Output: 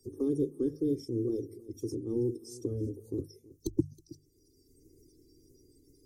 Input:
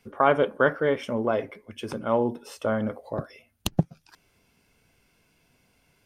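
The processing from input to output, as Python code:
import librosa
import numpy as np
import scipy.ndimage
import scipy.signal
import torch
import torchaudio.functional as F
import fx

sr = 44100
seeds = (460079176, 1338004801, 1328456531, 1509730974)

p1 = fx.spec_quant(x, sr, step_db=30)
p2 = scipy.signal.sosfilt(scipy.signal.ellip(3, 1.0, 40, [340.0, 5900.0], 'bandstop', fs=sr, output='sos'), p1)
p3 = fx.low_shelf(p2, sr, hz=220.0, db=-4.0)
p4 = fx.hum_notches(p3, sr, base_hz=50, count=3)
p5 = p4 + 0.87 * np.pad(p4, (int(2.5 * sr / 1000.0), 0))[:len(p4)]
p6 = fx.wow_flutter(p5, sr, seeds[0], rate_hz=2.1, depth_cents=28.0)
p7 = p6 + fx.echo_single(p6, sr, ms=320, db=-23.5, dry=0)
y = fx.band_squash(p7, sr, depth_pct=40)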